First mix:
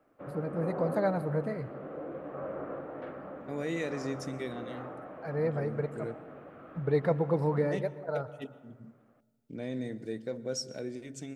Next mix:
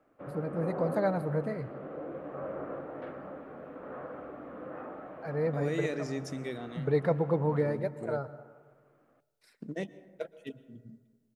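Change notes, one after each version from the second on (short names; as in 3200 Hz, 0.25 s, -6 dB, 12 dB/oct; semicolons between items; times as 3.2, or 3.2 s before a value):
second voice: entry +2.05 s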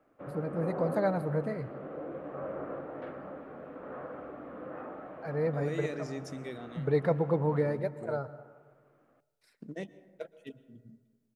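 second voice -3.5 dB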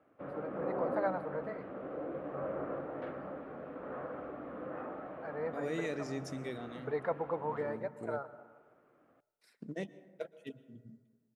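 first voice: add band-pass 1100 Hz, Q 1.1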